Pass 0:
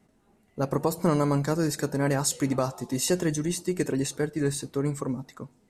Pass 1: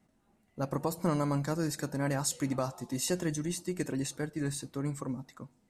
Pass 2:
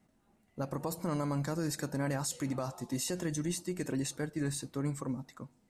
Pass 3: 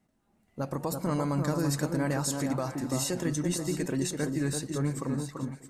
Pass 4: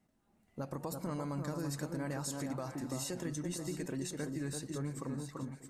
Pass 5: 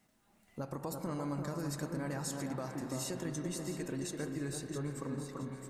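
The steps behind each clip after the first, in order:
parametric band 420 Hz −8 dB 0.23 octaves; level −5.5 dB
brickwall limiter −25 dBFS, peak gain reduction 7 dB
automatic gain control gain up to 7 dB; on a send: delay that swaps between a low-pass and a high-pass 336 ms, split 1,500 Hz, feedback 53%, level −4.5 dB; on the sum: level −3 dB
downward compressor 2 to 1, threshold −38 dBFS, peak gain reduction 8 dB; level −2.5 dB
convolution reverb RT60 5.4 s, pre-delay 31 ms, DRR 6.5 dB; one half of a high-frequency compander encoder only

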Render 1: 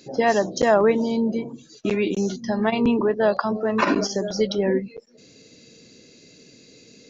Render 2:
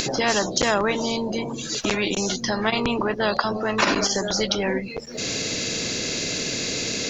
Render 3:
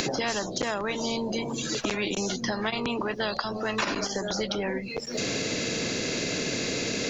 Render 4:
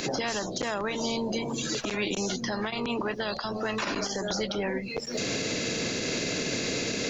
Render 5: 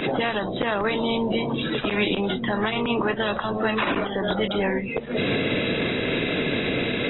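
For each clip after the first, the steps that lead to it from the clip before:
hum removal 74.94 Hz, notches 3; upward compression, threshold −23 dBFS; every bin compressed towards the loudest bin 2 to 1
multiband upward and downward compressor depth 100%; level −6.5 dB
brickwall limiter −20 dBFS, peak gain reduction 9 dB
level +6 dB; AAC 16 kbit/s 22,050 Hz

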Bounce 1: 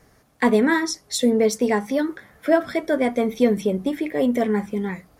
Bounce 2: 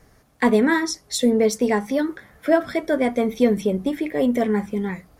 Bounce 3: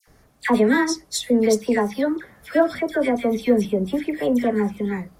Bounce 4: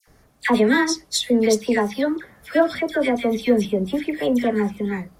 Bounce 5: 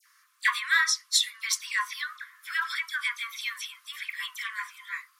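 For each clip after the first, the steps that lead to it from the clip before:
low-shelf EQ 68 Hz +7.5 dB
all-pass dispersion lows, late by 76 ms, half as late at 1,700 Hz
dynamic equaliser 3,400 Hz, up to +6 dB, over −42 dBFS, Q 1
linear-phase brick-wall high-pass 1,000 Hz

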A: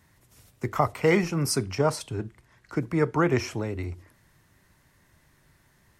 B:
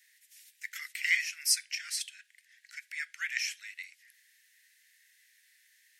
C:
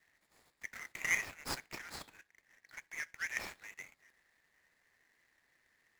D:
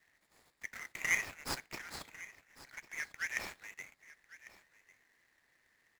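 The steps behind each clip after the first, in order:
Butterworth high-pass 1,700 Hz 72 dB per octave; level +2.5 dB
running median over 15 samples
single-tap delay 1,099 ms −18 dB; level +1 dB

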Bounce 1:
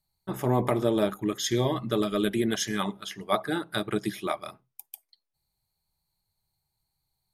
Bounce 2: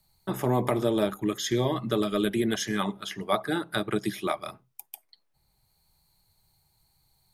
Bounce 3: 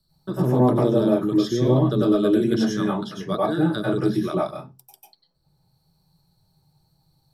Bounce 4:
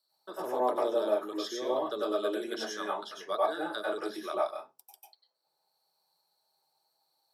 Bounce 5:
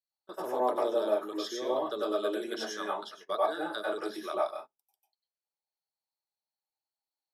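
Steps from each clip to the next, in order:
multiband upward and downward compressor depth 40%
convolution reverb RT60 0.20 s, pre-delay 91 ms, DRR −6 dB; level −8.5 dB
four-pole ladder high-pass 440 Hz, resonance 20%
noise gate −43 dBFS, range −22 dB

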